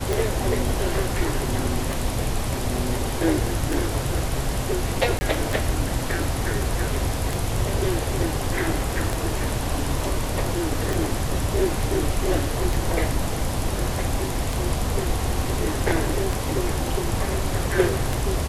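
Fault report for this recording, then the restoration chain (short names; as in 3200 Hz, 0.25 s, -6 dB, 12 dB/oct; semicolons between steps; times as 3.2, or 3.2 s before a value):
tick 33 1/3 rpm
5.19–5.21 gap 20 ms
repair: de-click; interpolate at 5.19, 20 ms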